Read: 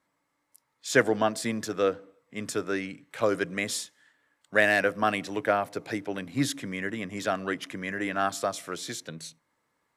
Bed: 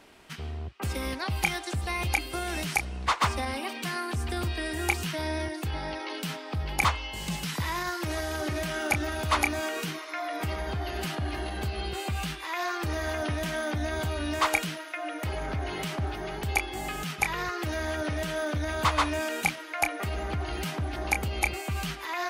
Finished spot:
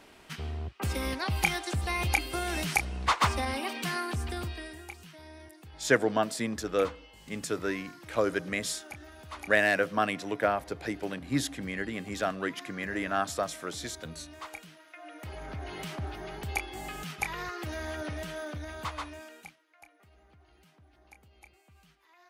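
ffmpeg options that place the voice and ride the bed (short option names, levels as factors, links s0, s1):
-filter_complex "[0:a]adelay=4950,volume=0.794[s0];[1:a]volume=4.22,afade=t=out:st=3.96:d=0.9:silence=0.125893,afade=t=in:st=14.71:d=1.18:silence=0.237137,afade=t=out:st=18.03:d=1.57:silence=0.0668344[s1];[s0][s1]amix=inputs=2:normalize=0"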